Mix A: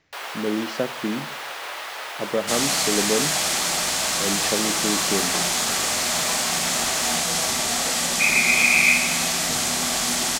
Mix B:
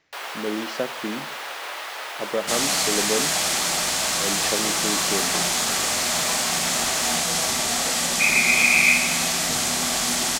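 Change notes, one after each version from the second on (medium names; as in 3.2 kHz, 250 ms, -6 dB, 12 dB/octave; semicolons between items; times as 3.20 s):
speech: add bass shelf 200 Hz -10.5 dB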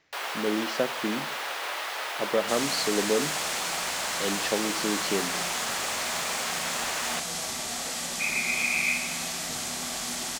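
second sound -9.5 dB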